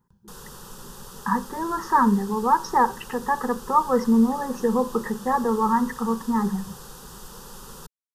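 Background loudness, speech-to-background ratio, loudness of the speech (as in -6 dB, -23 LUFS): -42.0 LUFS, 19.0 dB, -23.0 LUFS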